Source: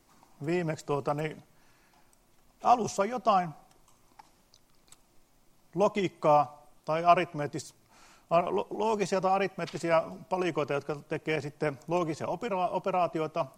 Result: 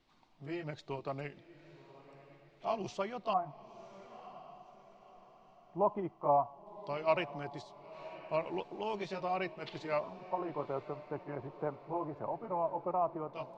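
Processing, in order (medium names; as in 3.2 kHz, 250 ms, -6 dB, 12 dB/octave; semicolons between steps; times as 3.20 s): sawtooth pitch modulation -1.5 st, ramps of 1434 ms; LFO low-pass square 0.15 Hz 970–3600 Hz; echo that smears into a reverb 1025 ms, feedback 42%, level -15.5 dB; trim -8.5 dB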